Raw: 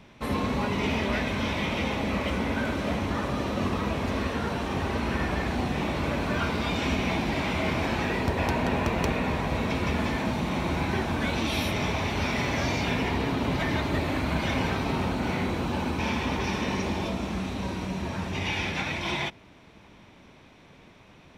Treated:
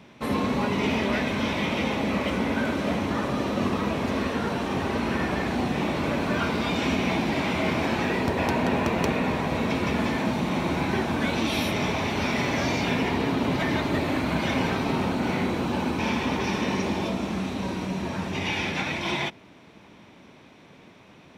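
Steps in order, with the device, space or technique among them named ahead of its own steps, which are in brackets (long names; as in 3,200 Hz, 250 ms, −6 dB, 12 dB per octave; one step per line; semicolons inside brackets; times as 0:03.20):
filter by subtraction (in parallel: low-pass filter 220 Hz 12 dB per octave + polarity inversion)
on the sum: level +1.5 dB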